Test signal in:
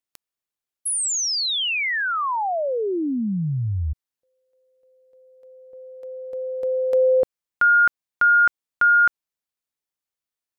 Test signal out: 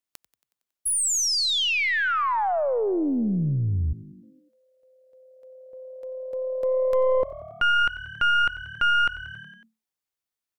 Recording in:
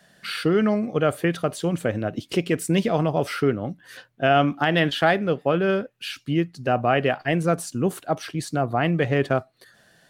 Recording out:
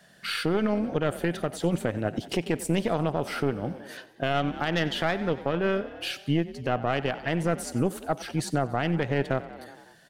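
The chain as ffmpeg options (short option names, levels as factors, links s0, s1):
-filter_complex "[0:a]aeval=exprs='0.447*(cos(1*acos(clip(val(0)/0.447,-1,1)))-cos(1*PI/2))+0.178*(cos(2*acos(clip(val(0)/0.447,-1,1)))-cos(2*PI/2))+0.00398*(cos(3*acos(clip(val(0)/0.447,-1,1)))-cos(3*PI/2))+0.02*(cos(6*acos(clip(val(0)/0.447,-1,1)))-cos(6*PI/2))+0.0158*(cos(8*acos(clip(val(0)/0.447,-1,1)))-cos(8*PI/2))':c=same,asplit=7[s0][s1][s2][s3][s4][s5][s6];[s1]adelay=92,afreqshift=37,volume=0.119[s7];[s2]adelay=184,afreqshift=74,volume=0.0759[s8];[s3]adelay=276,afreqshift=111,volume=0.0484[s9];[s4]adelay=368,afreqshift=148,volume=0.0313[s10];[s5]adelay=460,afreqshift=185,volume=0.02[s11];[s6]adelay=552,afreqshift=222,volume=0.0127[s12];[s0][s7][s8][s9][s10][s11][s12]amix=inputs=7:normalize=0,alimiter=limit=0.211:level=0:latency=1:release=299"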